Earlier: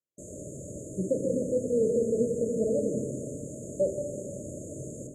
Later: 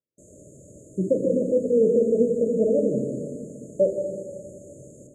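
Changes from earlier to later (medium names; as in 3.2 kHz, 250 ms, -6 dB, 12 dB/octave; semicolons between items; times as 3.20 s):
speech +6.5 dB; background -7.0 dB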